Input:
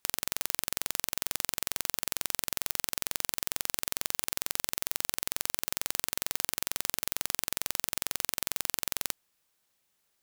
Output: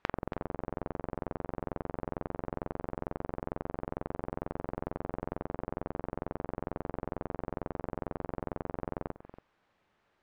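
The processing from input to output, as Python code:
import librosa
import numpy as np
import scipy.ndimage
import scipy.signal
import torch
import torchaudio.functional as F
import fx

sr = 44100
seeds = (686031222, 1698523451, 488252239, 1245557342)

p1 = fx.env_lowpass_down(x, sr, base_hz=620.0, full_db=-46.0)
p2 = scipy.signal.sosfilt(scipy.signal.butter(2, 1700.0, 'lowpass', fs=sr, output='sos'), p1)
p3 = p2 + fx.echo_single(p2, sr, ms=282, db=-14.5, dry=0)
y = p3 * librosa.db_to_amplitude(11.0)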